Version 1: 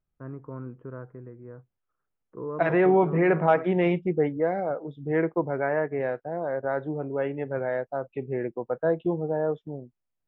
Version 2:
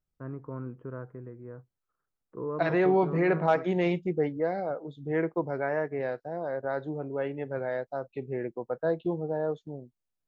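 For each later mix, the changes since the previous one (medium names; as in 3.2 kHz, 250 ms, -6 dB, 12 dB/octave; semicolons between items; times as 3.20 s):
second voice -3.5 dB; master: remove Savitzky-Golay filter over 25 samples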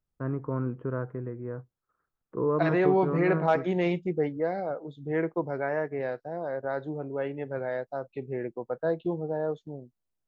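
first voice +7.5 dB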